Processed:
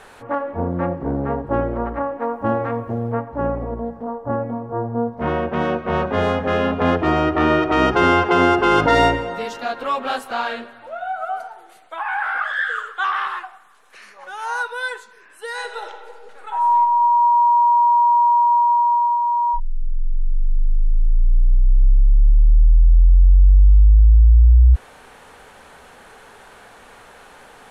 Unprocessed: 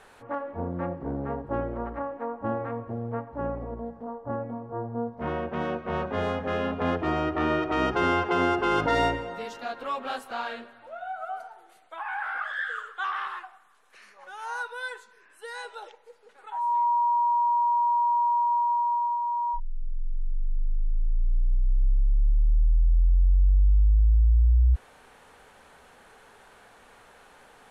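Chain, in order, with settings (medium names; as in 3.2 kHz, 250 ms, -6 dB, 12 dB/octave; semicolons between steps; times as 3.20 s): 2.22–3.12 s: treble shelf 4.4 kHz +11.5 dB; 15.47–16.77 s: reverb throw, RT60 1.7 s, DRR 5.5 dB; trim +9 dB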